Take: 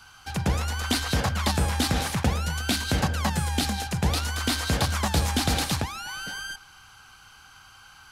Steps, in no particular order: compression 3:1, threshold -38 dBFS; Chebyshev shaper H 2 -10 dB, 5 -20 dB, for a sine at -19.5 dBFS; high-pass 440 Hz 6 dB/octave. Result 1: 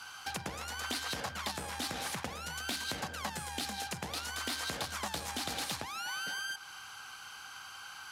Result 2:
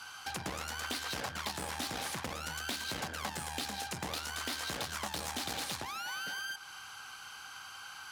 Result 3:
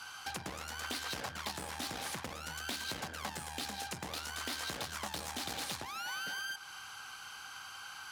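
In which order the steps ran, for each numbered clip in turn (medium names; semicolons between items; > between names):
compression > Chebyshev shaper > high-pass; Chebyshev shaper > high-pass > compression; Chebyshev shaper > compression > high-pass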